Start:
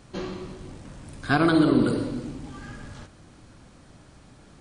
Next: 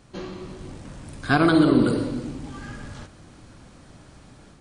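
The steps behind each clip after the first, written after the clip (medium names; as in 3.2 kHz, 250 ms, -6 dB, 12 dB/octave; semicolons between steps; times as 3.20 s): level rider gain up to 5.5 dB; trim -2.5 dB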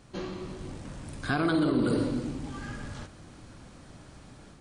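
peak limiter -16.5 dBFS, peak gain reduction 10 dB; trim -1.5 dB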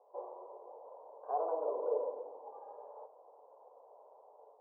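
Chebyshev band-pass 440–1000 Hz, order 4; trim +1 dB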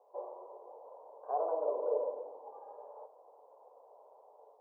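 dynamic bell 600 Hz, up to +5 dB, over -53 dBFS, Q 6.6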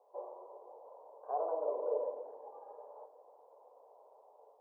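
tape echo 373 ms, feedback 69%, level -21 dB, low-pass 1.2 kHz; trim -2 dB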